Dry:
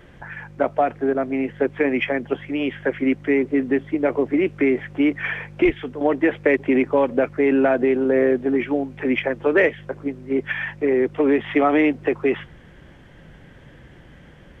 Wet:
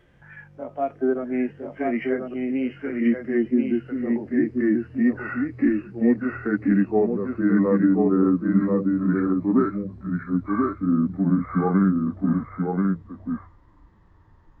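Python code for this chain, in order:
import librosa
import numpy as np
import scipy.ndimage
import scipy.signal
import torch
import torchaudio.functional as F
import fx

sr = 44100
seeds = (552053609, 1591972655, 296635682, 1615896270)

y = fx.pitch_glide(x, sr, semitones=-10.0, runs='starting unshifted')
y = fx.hpss(y, sr, part='percussive', gain_db=-16)
y = fx.noise_reduce_blind(y, sr, reduce_db=7)
y = y + 10.0 ** (-3.5 / 20.0) * np.pad(y, (int(1034 * sr / 1000.0), 0))[:len(y)]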